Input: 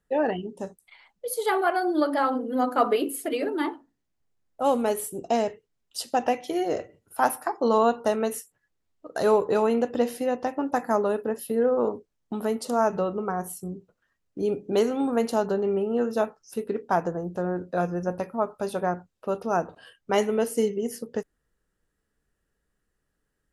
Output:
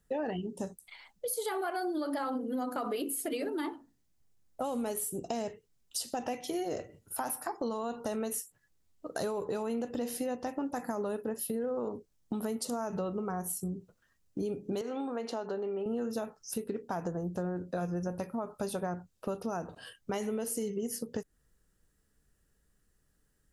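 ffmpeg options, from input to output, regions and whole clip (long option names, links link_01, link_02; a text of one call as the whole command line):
ffmpeg -i in.wav -filter_complex "[0:a]asettb=1/sr,asplit=3[link_01][link_02][link_03];[link_01]atrim=end=14.814[link_04];[link_02]atrim=start=14.81:end=15.86,asetpts=PTS-STARTPTS,afade=type=in:duration=0.004:curve=qsin,afade=type=out:start_time=1.046:duration=0.004:curve=qsin,acompressor=threshold=-27dB:ratio=2:attack=3.2:release=140:knee=1:detection=peak,highpass=340,lowpass=3800[link_05];[link_03]atrim=start=15.856[link_06];[link_04][link_05]acrossfade=duration=0.004:curve1=hsin:curve2=qsin[link_07];[link_07][link_06]acrossfade=duration=0.004:curve1=qsin:curve2=hsin,bass=frequency=250:gain=6,treble=frequency=4000:gain=8,alimiter=limit=-17.5dB:level=0:latency=1:release=51,acompressor=threshold=-34dB:ratio=3" out.wav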